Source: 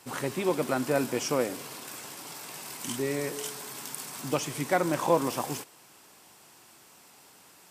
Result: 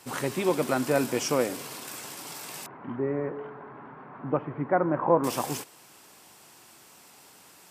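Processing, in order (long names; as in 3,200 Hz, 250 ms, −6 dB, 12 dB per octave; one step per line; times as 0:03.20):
0:02.66–0:05.24: inverse Chebyshev low-pass filter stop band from 6,400 Hz, stop band 70 dB
level +2 dB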